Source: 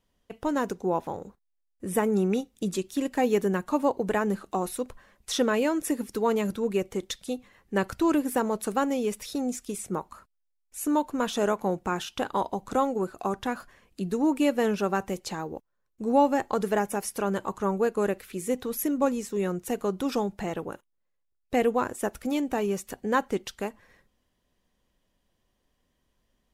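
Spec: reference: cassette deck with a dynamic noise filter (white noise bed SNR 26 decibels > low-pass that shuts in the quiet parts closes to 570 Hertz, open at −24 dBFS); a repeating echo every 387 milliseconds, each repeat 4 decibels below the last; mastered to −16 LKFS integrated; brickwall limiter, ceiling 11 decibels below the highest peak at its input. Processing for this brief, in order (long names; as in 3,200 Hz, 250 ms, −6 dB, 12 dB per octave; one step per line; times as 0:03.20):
brickwall limiter −21.5 dBFS
repeating echo 387 ms, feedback 63%, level −4 dB
white noise bed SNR 26 dB
low-pass that shuts in the quiet parts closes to 570 Hz, open at −24 dBFS
level +15 dB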